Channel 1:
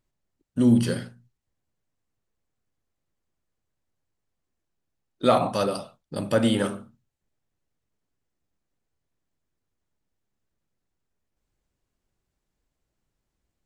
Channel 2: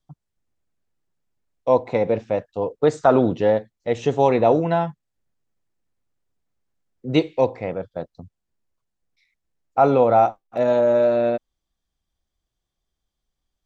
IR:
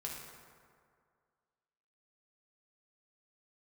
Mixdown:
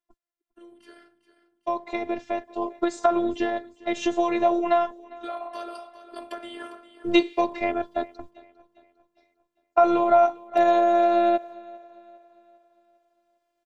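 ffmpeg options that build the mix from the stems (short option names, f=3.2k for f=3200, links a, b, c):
-filter_complex "[0:a]acompressor=threshold=-27dB:ratio=12,acrossover=split=370 3200:gain=0.0631 1 0.224[a][b][c];[a][b][c]amix=inputs=3:normalize=0,volume=-4.5dB,asplit=3[d][e][f];[e]volume=-19.5dB[g];[f]volume=-13dB[h];[1:a]agate=range=-14dB:threshold=-44dB:ratio=16:detection=peak,lowshelf=f=480:g=-7,acompressor=threshold=-23dB:ratio=6,volume=3dB,asplit=2[i][j];[j]volume=-23dB[k];[2:a]atrim=start_sample=2205[l];[g][l]afir=irnorm=-1:irlink=0[m];[h][k]amix=inputs=2:normalize=0,aecho=0:1:402|804|1206|1608|2010|2412:1|0.42|0.176|0.0741|0.0311|0.0131[n];[d][i][m][n]amix=inputs=4:normalize=0,highpass=54,dynaudnorm=f=320:g=13:m=12.5dB,afftfilt=real='hypot(re,im)*cos(PI*b)':imag='0':win_size=512:overlap=0.75"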